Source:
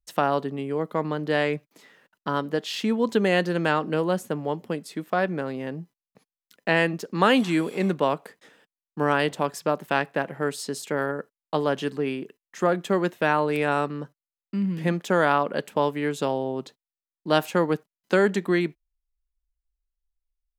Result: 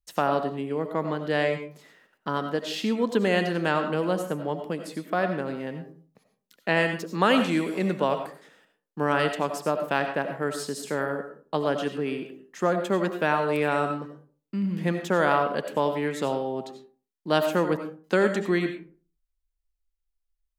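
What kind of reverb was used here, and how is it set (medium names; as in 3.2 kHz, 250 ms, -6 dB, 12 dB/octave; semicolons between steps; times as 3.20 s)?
algorithmic reverb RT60 0.41 s, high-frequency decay 0.5×, pre-delay 50 ms, DRR 6.5 dB; trim -2 dB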